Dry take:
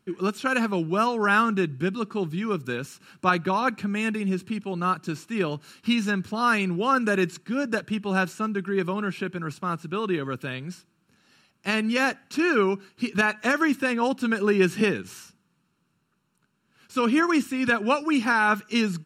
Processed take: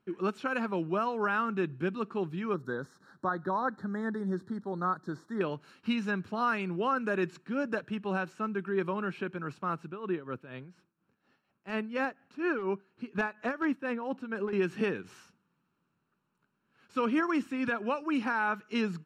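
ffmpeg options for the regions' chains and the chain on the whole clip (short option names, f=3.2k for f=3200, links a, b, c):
-filter_complex "[0:a]asettb=1/sr,asplit=3[a][b][c];[a]atrim=end=2.544[d];[b]atrim=start=2.54:end=5.41,asetpts=PTS-STARTPTS,afade=t=in:d=0.004:c=qsin,afade=t=out:st=2.866:d=0.004:c=qsin,acrossover=split=3000[e][f];[f]acompressor=threshold=-45dB:ratio=4:attack=1:release=60[g];[e][g]amix=inputs=2:normalize=0,asuperstop=centerf=2600:order=8:qfactor=1.6[h];[c]atrim=start=5.406[i];[d][h]acrossfade=d=0.004:c1=hsin:c2=qsin[j];[j][i]acrossfade=d=0.004:c1=qsin:c2=hsin,asettb=1/sr,asplit=3[k][l][m];[k]atrim=end=9.874[n];[l]atrim=start=9.87:end=14.53,asetpts=PTS-STARTPTS,afade=t=in:d=0.004:c=qsin,afade=t=out:st=4.656:d=0.004:c=qsin,aeval=exprs='0.224*(abs(mod(val(0)/0.224+3,4)-2)-1)':c=same,tremolo=f=4.2:d=0.73,highshelf=f=2.5k:g=-7.5[o];[m]atrim=start=14.526[p];[n][o]acrossfade=d=0.004:c1=hsin:c2=qsin[q];[q][p]acrossfade=d=0.004:c1=qsin:c2=hsin,lowpass=f=1.1k:p=1,lowshelf=f=330:g=-9.5,alimiter=limit=-19.5dB:level=0:latency=1:release=307"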